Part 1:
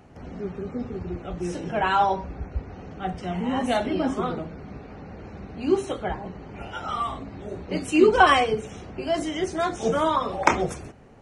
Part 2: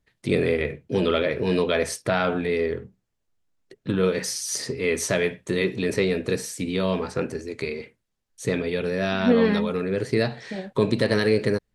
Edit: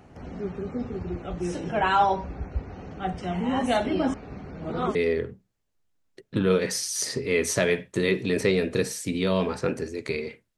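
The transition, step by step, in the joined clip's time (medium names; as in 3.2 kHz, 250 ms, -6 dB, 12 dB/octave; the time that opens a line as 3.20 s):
part 1
4.14–4.95 s: reverse
4.95 s: go over to part 2 from 2.48 s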